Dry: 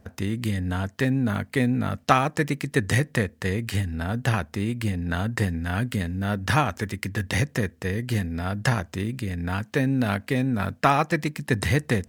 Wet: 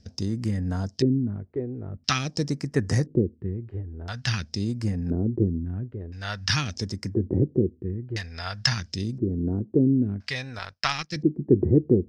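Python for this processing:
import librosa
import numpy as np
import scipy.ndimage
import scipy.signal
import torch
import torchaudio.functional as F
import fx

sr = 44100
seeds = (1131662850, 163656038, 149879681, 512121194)

y = fx.power_curve(x, sr, exponent=1.4, at=(10.59, 11.16))
y = fx.phaser_stages(y, sr, stages=2, low_hz=210.0, high_hz=3500.0, hz=0.45, feedback_pct=35)
y = fx.filter_lfo_lowpass(y, sr, shape='square', hz=0.49, low_hz=360.0, high_hz=5200.0, q=6.4)
y = F.gain(torch.from_numpy(y), -2.0).numpy()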